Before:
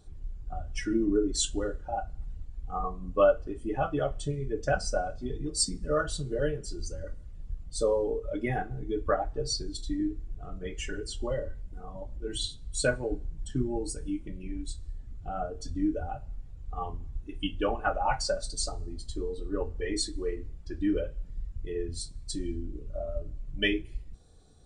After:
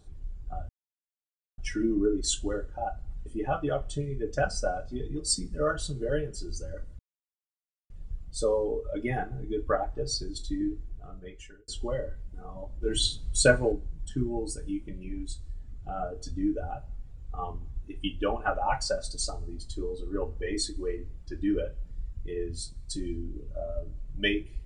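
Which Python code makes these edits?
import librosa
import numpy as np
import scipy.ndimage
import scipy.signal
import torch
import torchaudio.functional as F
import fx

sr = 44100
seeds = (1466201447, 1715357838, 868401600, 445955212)

y = fx.edit(x, sr, fx.insert_silence(at_s=0.69, length_s=0.89),
    fx.cut(start_s=2.37, length_s=1.19),
    fx.insert_silence(at_s=7.29, length_s=0.91),
    fx.fade_out_span(start_s=10.15, length_s=0.92),
    fx.clip_gain(start_s=12.21, length_s=0.9, db=6.5), tone=tone)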